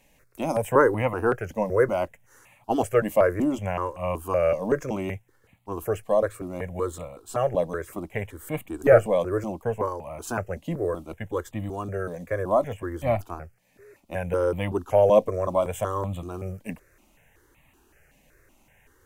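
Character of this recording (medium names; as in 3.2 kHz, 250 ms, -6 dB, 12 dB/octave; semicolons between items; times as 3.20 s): notches that jump at a steady rate 5.3 Hz 370–1500 Hz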